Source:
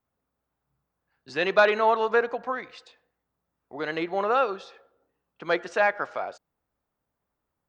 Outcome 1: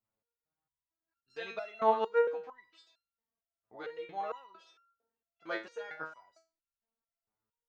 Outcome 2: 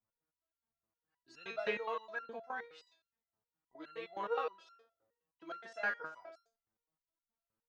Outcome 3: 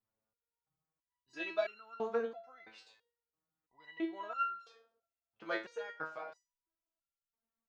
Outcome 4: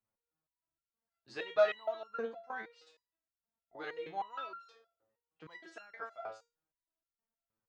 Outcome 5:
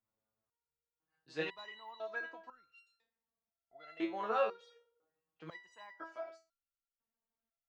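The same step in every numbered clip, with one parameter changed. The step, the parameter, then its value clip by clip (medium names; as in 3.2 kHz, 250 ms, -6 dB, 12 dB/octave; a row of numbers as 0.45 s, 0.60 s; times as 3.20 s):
resonator arpeggio, rate: 4.4 Hz, 9.6 Hz, 3 Hz, 6.4 Hz, 2 Hz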